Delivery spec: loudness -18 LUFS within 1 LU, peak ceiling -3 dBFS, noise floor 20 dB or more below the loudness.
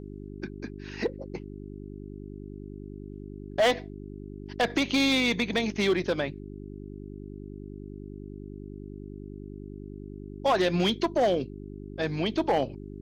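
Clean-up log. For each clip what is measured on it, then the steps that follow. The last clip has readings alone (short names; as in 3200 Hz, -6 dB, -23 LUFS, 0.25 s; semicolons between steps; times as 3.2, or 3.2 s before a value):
clipped 0.9%; flat tops at -18.0 dBFS; hum 50 Hz; harmonics up to 400 Hz; hum level -38 dBFS; loudness -27.5 LUFS; peak -18.0 dBFS; loudness target -18.0 LUFS
-> clip repair -18 dBFS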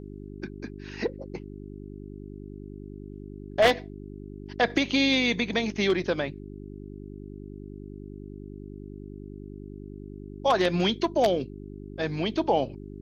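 clipped 0.0%; hum 50 Hz; harmonics up to 400 Hz; hum level -38 dBFS
-> de-hum 50 Hz, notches 8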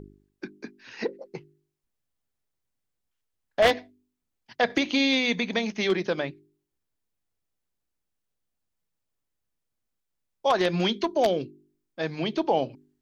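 hum none; loudness -26.0 LUFS; peak -8.5 dBFS; loudness target -18.0 LUFS
-> gain +8 dB; limiter -3 dBFS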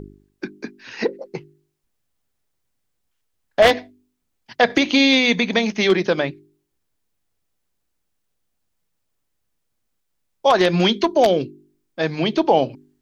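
loudness -18.5 LUFS; peak -3.0 dBFS; noise floor -73 dBFS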